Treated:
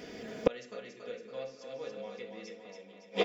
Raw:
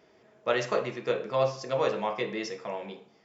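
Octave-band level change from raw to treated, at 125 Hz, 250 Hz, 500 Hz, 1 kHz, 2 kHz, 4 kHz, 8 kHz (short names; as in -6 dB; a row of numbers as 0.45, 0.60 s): -10.5 dB, -5.0 dB, -7.5 dB, -12.5 dB, -9.0 dB, -4.5 dB, n/a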